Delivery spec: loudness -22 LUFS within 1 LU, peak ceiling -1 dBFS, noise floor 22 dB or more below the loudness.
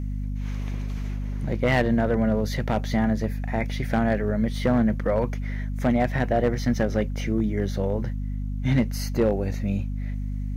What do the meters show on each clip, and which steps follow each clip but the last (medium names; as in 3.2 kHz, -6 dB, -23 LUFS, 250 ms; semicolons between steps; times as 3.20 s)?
clipped samples 0.6%; clipping level -14.0 dBFS; hum 50 Hz; highest harmonic 250 Hz; hum level -26 dBFS; loudness -25.5 LUFS; peak level -14.0 dBFS; loudness target -22.0 LUFS
-> clip repair -14 dBFS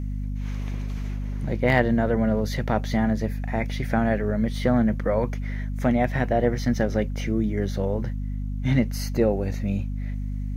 clipped samples 0.0%; hum 50 Hz; highest harmonic 250 Hz; hum level -26 dBFS
-> hum notches 50/100/150/200/250 Hz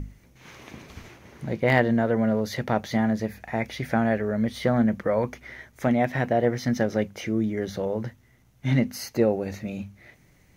hum not found; loudness -25.5 LUFS; peak level -6.0 dBFS; loudness target -22.0 LUFS
-> trim +3.5 dB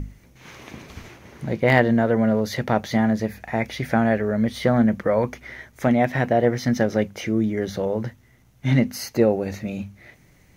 loudness -22.0 LUFS; peak level -2.5 dBFS; noise floor -55 dBFS